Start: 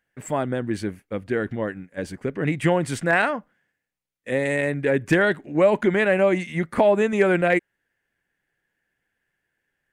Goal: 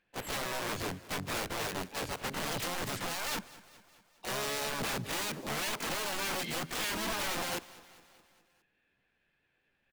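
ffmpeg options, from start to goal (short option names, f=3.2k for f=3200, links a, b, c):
-filter_complex "[0:a]lowpass=f=2k:p=1,acompressor=threshold=-24dB:ratio=6,alimiter=level_in=2dB:limit=-24dB:level=0:latency=1:release=35,volume=-2dB,aeval=exprs='(mod(39.8*val(0)+1,2)-1)/39.8':c=same,asplit=2[a][b];[b]aecho=0:1:207|414|621|828|1035:0.106|0.0625|0.0369|0.0218|0.0128[c];[a][c]amix=inputs=2:normalize=0,asplit=3[d][e][f];[e]asetrate=66075,aresample=44100,atempo=0.66742,volume=-2dB[g];[f]asetrate=88200,aresample=44100,atempo=0.5,volume=-12dB[h];[d][g][h]amix=inputs=3:normalize=0"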